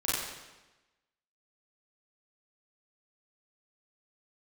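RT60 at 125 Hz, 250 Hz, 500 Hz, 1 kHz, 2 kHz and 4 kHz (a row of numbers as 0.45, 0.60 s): 1.1, 1.2, 1.1, 1.1, 1.1, 1.0 s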